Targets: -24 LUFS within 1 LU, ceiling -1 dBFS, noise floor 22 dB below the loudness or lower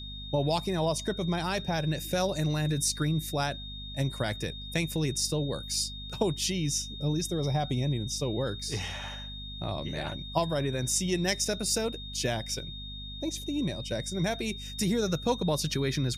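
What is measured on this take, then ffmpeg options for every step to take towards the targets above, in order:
hum 50 Hz; harmonics up to 250 Hz; hum level -41 dBFS; steady tone 3700 Hz; tone level -41 dBFS; loudness -30.5 LUFS; peak -13.5 dBFS; loudness target -24.0 LUFS
-> -af "bandreject=f=50:t=h:w=6,bandreject=f=100:t=h:w=6,bandreject=f=150:t=h:w=6,bandreject=f=200:t=h:w=6,bandreject=f=250:t=h:w=6"
-af "bandreject=f=3.7k:w=30"
-af "volume=6.5dB"

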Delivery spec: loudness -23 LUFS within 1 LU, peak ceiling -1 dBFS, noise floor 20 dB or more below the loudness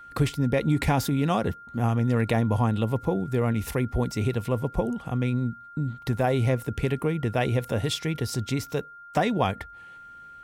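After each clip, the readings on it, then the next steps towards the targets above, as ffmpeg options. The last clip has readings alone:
steady tone 1400 Hz; tone level -43 dBFS; loudness -26.5 LUFS; peak -10.0 dBFS; loudness target -23.0 LUFS
-> -af "bandreject=f=1.4k:w=30"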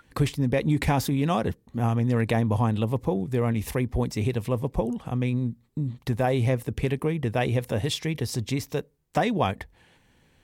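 steady tone none; loudness -26.5 LUFS; peak -10.0 dBFS; loudness target -23.0 LUFS
-> -af "volume=3.5dB"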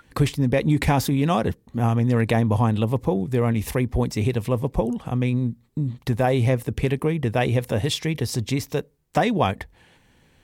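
loudness -23.0 LUFS; peak -6.5 dBFS; noise floor -59 dBFS

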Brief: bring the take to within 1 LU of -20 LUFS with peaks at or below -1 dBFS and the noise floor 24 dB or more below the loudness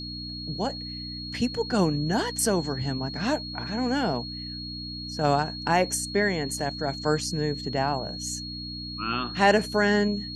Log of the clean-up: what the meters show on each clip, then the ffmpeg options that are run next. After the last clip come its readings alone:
hum 60 Hz; harmonics up to 300 Hz; hum level -36 dBFS; steady tone 4300 Hz; tone level -36 dBFS; loudness -27.0 LUFS; peak -8.0 dBFS; loudness target -20.0 LUFS
-> -af "bandreject=f=60:t=h:w=4,bandreject=f=120:t=h:w=4,bandreject=f=180:t=h:w=4,bandreject=f=240:t=h:w=4,bandreject=f=300:t=h:w=4"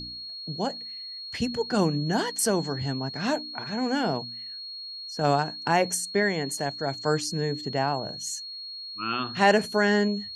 hum none; steady tone 4300 Hz; tone level -36 dBFS
-> -af "bandreject=f=4.3k:w=30"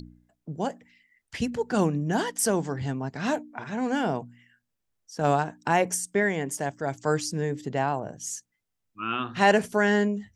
steady tone none; loudness -27.0 LUFS; peak -8.5 dBFS; loudness target -20.0 LUFS
-> -af "volume=7dB"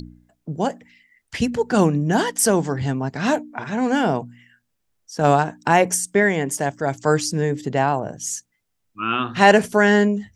loudness -20.0 LUFS; peak -1.5 dBFS; noise floor -74 dBFS

